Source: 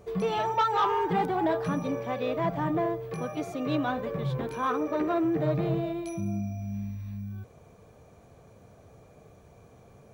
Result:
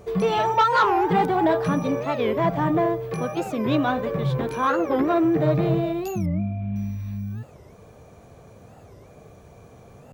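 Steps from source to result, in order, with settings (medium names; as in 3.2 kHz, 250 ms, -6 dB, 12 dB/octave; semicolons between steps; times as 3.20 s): 6.27–6.76 s: steep low-pass 3.5 kHz 36 dB/octave; warped record 45 rpm, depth 250 cents; trim +6.5 dB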